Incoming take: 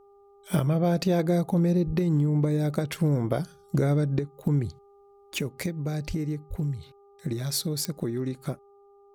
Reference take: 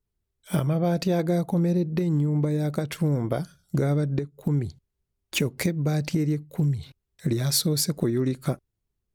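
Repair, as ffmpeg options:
-filter_complex "[0:a]adeclick=t=4,bandreject=f=401.4:t=h:w=4,bandreject=f=802.8:t=h:w=4,bandreject=f=1.2042k:t=h:w=4,asplit=3[a][b][c];[a]afade=t=out:st=1.86:d=0.02[d];[b]highpass=f=140:w=0.5412,highpass=f=140:w=1.3066,afade=t=in:st=1.86:d=0.02,afade=t=out:st=1.98:d=0.02[e];[c]afade=t=in:st=1.98:d=0.02[f];[d][e][f]amix=inputs=3:normalize=0,asplit=3[g][h][i];[g]afade=t=out:st=6.07:d=0.02[j];[h]highpass=f=140:w=0.5412,highpass=f=140:w=1.3066,afade=t=in:st=6.07:d=0.02,afade=t=out:st=6.19:d=0.02[k];[i]afade=t=in:st=6.19:d=0.02[l];[j][k][l]amix=inputs=3:normalize=0,asplit=3[m][n][o];[m]afade=t=out:st=6.49:d=0.02[p];[n]highpass=f=140:w=0.5412,highpass=f=140:w=1.3066,afade=t=in:st=6.49:d=0.02,afade=t=out:st=6.61:d=0.02[q];[o]afade=t=in:st=6.61:d=0.02[r];[p][q][r]amix=inputs=3:normalize=0,asetnsamples=n=441:p=0,asendcmd='5.32 volume volume 5.5dB',volume=0dB"

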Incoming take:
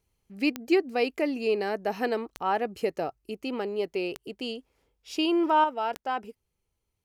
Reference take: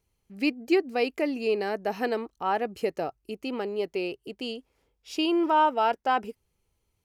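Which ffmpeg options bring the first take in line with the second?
-af "adeclick=t=4,asetnsamples=n=441:p=0,asendcmd='5.64 volume volume 5.5dB',volume=0dB"

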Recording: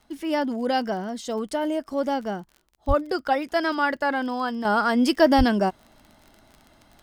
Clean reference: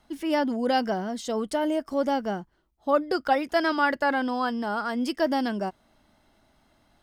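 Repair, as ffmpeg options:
-filter_complex "[0:a]adeclick=t=4,asplit=3[a][b][c];[a]afade=t=out:st=2.87:d=0.02[d];[b]highpass=f=140:w=0.5412,highpass=f=140:w=1.3066,afade=t=in:st=2.87:d=0.02,afade=t=out:st=2.99:d=0.02[e];[c]afade=t=in:st=2.99:d=0.02[f];[d][e][f]amix=inputs=3:normalize=0,asplit=3[g][h][i];[g]afade=t=out:st=5.37:d=0.02[j];[h]highpass=f=140:w=0.5412,highpass=f=140:w=1.3066,afade=t=in:st=5.37:d=0.02,afade=t=out:st=5.49:d=0.02[k];[i]afade=t=in:st=5.49:d=0.02[l];[j][k][l]amix=inputs=3:normalize=0,asetnsamples=n=441:p=0,asendcmd='4.65 volume volume -7.5dB',volume=0dB"

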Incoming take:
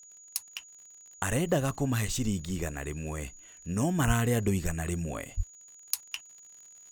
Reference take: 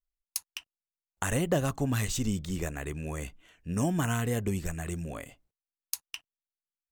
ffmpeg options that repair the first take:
-filter_complex "[0:a]adeclick=t=4,bandreject=f=6.8k:w=30,asplit=3[a][b][c];[a]afade=t=out:st=4.06:d=0.02[d];[b]highpass=f=140:w=0.5412,highpass=f=140:w=1.3066,afade=t=in:st=4.06:d=0.02,afade=t=out:st=4.18:d=0.02[e];[c]afade=t=in:st=4.18:d=0.02[f];[d][e][f]amix=inputs=3:normalize=0,asplit=3[g][h][i];[g]afade=t=out:st=5.36:d=0.02[j];[h]highpass=f=140:w=0.5412,highpass=f=140:w=1.3066,afade=t=in:st=5.36:d=0.02,afade=t=out:st=5.48:d=0.02[k];[i]afade=t=in:st=5.48:d=0.02[l];[j][k][l]amix=inputs=3:normalize=0,asetnsamples=n=441:p=0,asendcmd='4 volume volume -3dB',volume=0dB"

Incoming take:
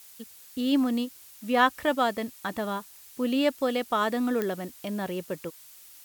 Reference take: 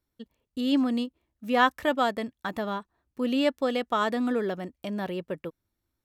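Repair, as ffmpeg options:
-af "adeclick=t=4,afftdn=nr=30:nf=-50"

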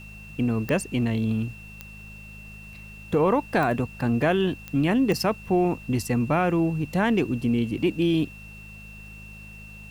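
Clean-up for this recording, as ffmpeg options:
-af "adeclick=t=4,bandreject=f=52.4:t=h:w=4,bandreject=f=104.8:t=h:w=4,bandreject=f=157.2:t=h:w=4,bandreject=f=209.6:t=h:w=4,bandreject=f=2.7k:w=30,agate=range=-21dB:threshold=-35dB"

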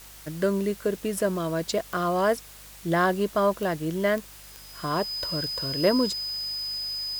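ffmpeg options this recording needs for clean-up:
-af "adeclick=t=4,bandreject=f=49.8:t=h:w=4,bandreject=f=99.6:t=h:w=4,bandreject=f=149.4:t=h:w=4,bandreject=f=199.2:t=h:w=4,bandreject=f=5k:w=30,afwtdn=0.0045"

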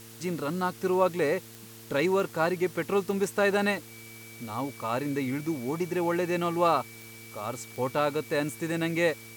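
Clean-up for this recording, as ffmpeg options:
-af "adeclick=t=4,bandreject=f=113:t=h:w=4,bandreject=f=226:t=h:w=4,bandreject=f=339:t=h:w=4,bandreject=f=452:t=h:w=4,bandreject=f=2.3k:w=30,afwtdn=0.0035"

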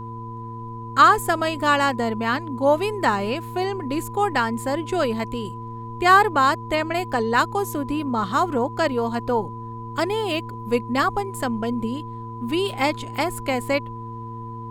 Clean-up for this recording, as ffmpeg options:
-af "bandreject=f=115:t=h:w=4,bandreject=f=230:t=h:w=4,bandreject=f=345:t=h:w=4,bandreject=f=460:t=h:w=4,bandreject=f=1k:w=30,agate=range=-21dB:threshold=-26dB"

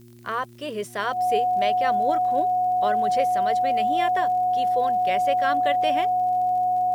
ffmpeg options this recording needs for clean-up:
-af "adeclick=t=4,bandreject=f=118.8:t=h:w=4,bandreject=f=237.6:t=h:w=4,bandreject=f=356.4:t=h:w=4,bandreject=f=730:w=30,agate=range=-21dB:threshold=-22dB"

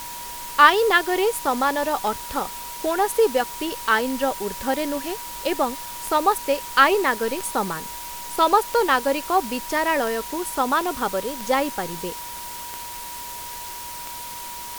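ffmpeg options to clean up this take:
-af "adeclick=t=4,bandreject=f=960:w=30,afftdn=nr=30:nf=-35"

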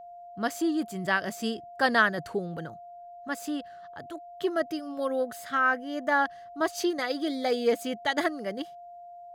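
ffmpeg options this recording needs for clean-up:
-af "bandreject=f=700:w=30"

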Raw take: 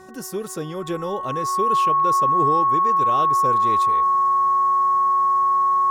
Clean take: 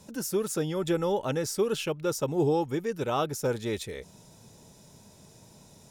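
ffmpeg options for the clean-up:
-af "bandreject=f=374.7:t=h:w=4,bandreject=f=749.4:t=h:w=4,bandreject=f=1.1241k:t=h:w=4,bandreject=f=1.4988k:t=h:w=4,bandreject=f=1.8735k:t=h:w=4,bandreject=f=1.1k:w=30"

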